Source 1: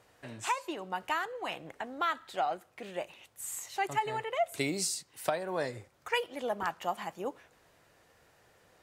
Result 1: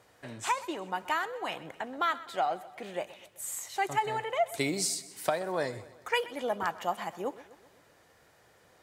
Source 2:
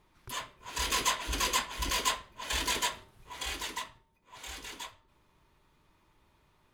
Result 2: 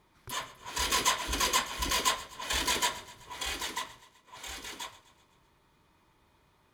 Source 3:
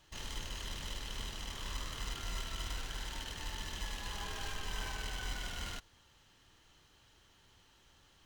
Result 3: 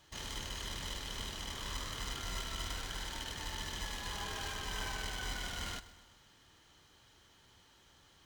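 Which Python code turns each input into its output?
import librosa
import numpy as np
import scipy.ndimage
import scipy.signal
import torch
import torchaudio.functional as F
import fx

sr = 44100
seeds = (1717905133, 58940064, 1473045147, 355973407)

p1 = fx.highpass(x, sr, hz=57.0, slope=6)
p2 = fx.notch(p1, sr, hz=2700.0, q=16.0)
p3 = p2 + fx.echo_feedback(p2, sr, ms=127, feedback_pct=56, wet_db=-18.0, dry=0)
y = p3 * librosa.db_to_amplitude(2.0)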